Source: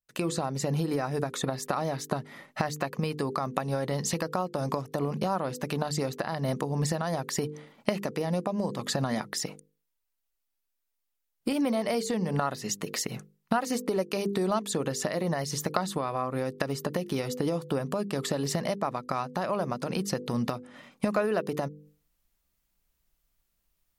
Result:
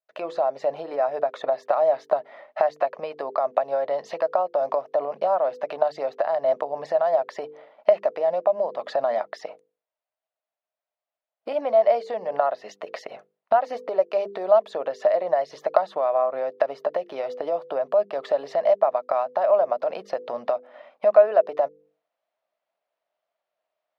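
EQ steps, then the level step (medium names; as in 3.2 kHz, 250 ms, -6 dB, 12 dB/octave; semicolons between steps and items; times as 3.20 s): resonant high-pass 630 Hz, resonance Q 7.2; distance through air 290 m; 0.0 dB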